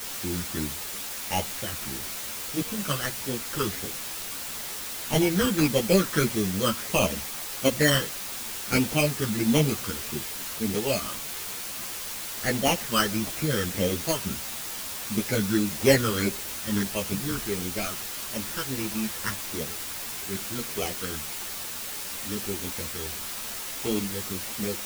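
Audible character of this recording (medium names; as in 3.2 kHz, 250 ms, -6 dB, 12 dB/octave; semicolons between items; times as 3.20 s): aliases and images of a low sample rate 3.7 kHz, jitter 0%; phasing stages 12, 1.6 Hz, lowest notch 720–1600 Hz; a quantiser's noise floor 6-bit, dither triangular; a shimmering, thickened sound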